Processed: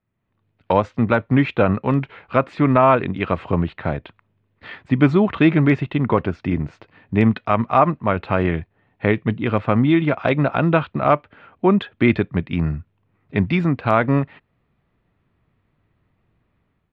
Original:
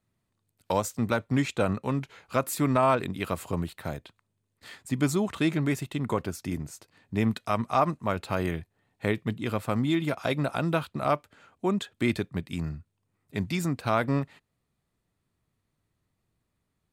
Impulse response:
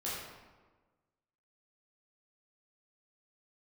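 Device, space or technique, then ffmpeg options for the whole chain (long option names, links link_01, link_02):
action camera in a waterproof case: -af "lowpass=frequency=2900:width=0.5412,lowpass=frequency=2900:width=1.3066,dynaudnorm=framelen=130:gausssize=5:maxgain=12dB" -ar 48000 -c:a aac -b:a 128k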